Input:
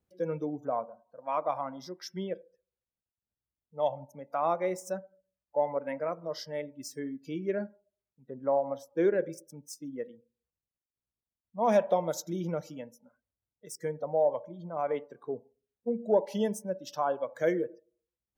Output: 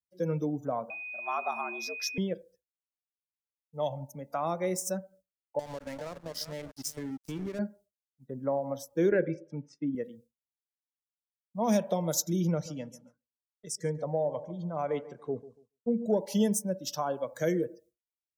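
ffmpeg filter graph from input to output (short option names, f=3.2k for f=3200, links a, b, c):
-filter_complex "[0:a]asettb=1/sr,asplit=3[a][b][c];[a]atrim=end=0.904[d];[b]atrim=start=0.9:end=2.18,asetpts=PTS-STARTPTS,afade=t=in:d=0.004:c=qsin,afade=t=out:st=1.276:d=0.004:c=qsin,equalizer=f=190:w=2.6:g=-8.5,aeval=exprs='val(0)+0.0112*sin(2*PI*2400*n/s)':c=same,afreqshift=92[e];[c]atrim=start=2.176[f];[d][e]acrossfade=d=0.004:c1=hsin:c2=qsin[g];[g][f]acrossfade=d=0.004:c1=qsin:c2=hsin,asettb=1/sr,asplit=3[h][i][j];[h]atrim=end=5.594[k];[i]atrim=start=5.59:end=7.59,asetpts=PTS-STARTPTS,afade=t=in:d=0.004:c=qsin,afade=t=out:st=1.996:d=0.004:c=qsin,aecho=1:1:394:0.178,atrim=end_sample=88200,acompressor=threshold=-33dB:ratio=10:attack=3.2:release=140:knee=1:detection=peak,aeval=exprs='sgn(val(0))*max(abs(val(0))-0.00447,0)':c=same[l];[j]atrim=start=7.586[m];[k][l]acrossfade=d=0.004:c1=hsin:c2=qsin[n];[n][m]acrossfade=d=0.004:c1=qsin:c2=hsin,asettb=1/sr,asplit=3[o][p][q];[o]atrim=end=9.114[r];[p]atrim=start=9.11:end=9.95,asetpts=PTS-STARTPTS,afade=t=in:d=0.004:c=qsin,afade=t=out:st=0.836:d=0.004:c=qsin,acontrast=78,highpass=150,equalizer=f=200:t=q:w=4:g=-7,equalizer=f=1.5k:t=q:w=4:g=6,equalizer=f=2.2k:t=q:w=4:g=6,lowpass=f=2.6k:w=0.5412,lowpass=f=2.6k:w=1.3066[s];[q]atrim=start=9.946[t];[r][s]acrossfade=d=0.004:c1=hsin:c2=qsin[u];[u][t]acrossfade=d=0.004:c1=qsin:c2=hsin,asettb=1/sr,asplit=3[v][w][x];[v]atrim=end=12.514[y];[w]atrim=start=12.51:end=16.06,asetpts=PTS-STARTPTS,afade=t=in:d=0.004:c=qsin,afade=t=out:st=3.546:d=0.004:c=qsin,lowpass=7.3k,asplit=2[z][aa];[aa]adelay=142,lowpass=f=2.6k:p=1,volume=-17.5dB,asplit=2[ab][ac];[ac]adelay=142,lowpass=f=2.6k:p=1,volume=0.34,asplit=2[ad][ae];[ae]adelay=142,lowpass=f=2.6k:p=1,volume=0.34[af];[z][ab][ad][af]amix=inputs=4:normalize=0,atrim=end_sample=156555[ag];[x]atrim=start=16.056[ah];[y][ag]acrossfade=d=0.004:c1=hsin:c2=qsin[ai];[ai][ah]acrossfade=d=0.004:c1=qsin:c2=hsin,agate=range=-33dB:threshold=-55dB:ratio=3:detection=peak,bass=f=250:g=9,treble=f=4k:g=12,acrossover=split=350|3000[aj][ak][al];[ak]acompressor=threshold=-28dB:ratio=6[am];[aj][am][al]amix=inputs=3:normalize=0"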